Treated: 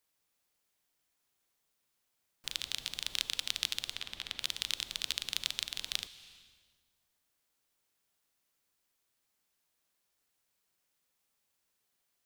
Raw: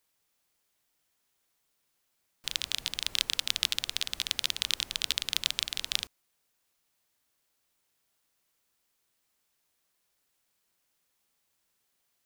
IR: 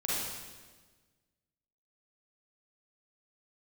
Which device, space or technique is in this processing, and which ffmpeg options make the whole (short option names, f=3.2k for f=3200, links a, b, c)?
compressed reverb return: -filter_complex "[0:a]asplit=3[a][b][c];[a]afade=t=out:st=3.93:d=0.02[d];[b]bass=f=250:g=0,treble=f=4k:g=-11,afade=t=in:st=3.93:d=0.02,afade=t=out:st=4.39:d=0.02[e];[c]afade=t=in:st=4.39:d=0.02[f];[d][e][f]amix=inputs=3:normalize=0,asplit=2[g][h];[1:a]atrim=start_sample=2205[i];[h][i]afir=irnorm=-1:irlink=0,acompressor=threshold=-32dB:ratio=4,volume=-12dB[j];[g][j]amix=inputs=2:normalize=0,volume=-6dB"